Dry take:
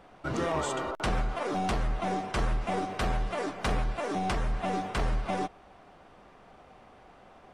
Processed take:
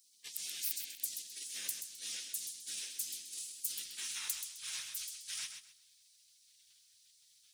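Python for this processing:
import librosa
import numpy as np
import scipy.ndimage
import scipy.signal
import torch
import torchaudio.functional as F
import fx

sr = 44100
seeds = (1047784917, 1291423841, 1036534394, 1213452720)

y = fx.tracing_dist(x, sr, depth_ms=0.031)
y = fx.filter_sweep_highpass(y, sr, from_hz=1000.0, to_hz=360.0, start_s=3.6, end_s=4.33, q=2.0)
y = fx.spec_gate(y, sr, threshold_db=-30, keep='weak')
y = scipy.signal.lfilter([1.0, -0.9], [1.0], y)
y = fx.hum_notches(y, sr, base_hz=60, count=4)
y = fx.echo_feedback(y, sr, ms=130, feedback_pct=24, wet_db=-8.0)
y = F.gain(torch.from_numpy(y), 12.5).numpy()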